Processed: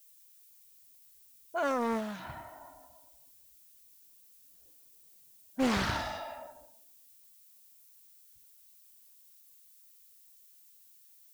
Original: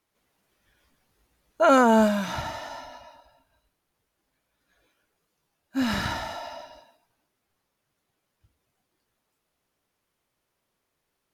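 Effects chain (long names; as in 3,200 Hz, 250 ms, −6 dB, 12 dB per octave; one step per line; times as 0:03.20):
source passing by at 0:05.16, 13 m/s, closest 11 metres
low-pass that shuts in the quiet parts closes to 540 Hz, open at −30.5 dBFS
automatic gain control gain up to 8 dB
background noise violet −51 dBFS
highs frequency-modulated by the lows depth 0.64 ms
level −8.5 dB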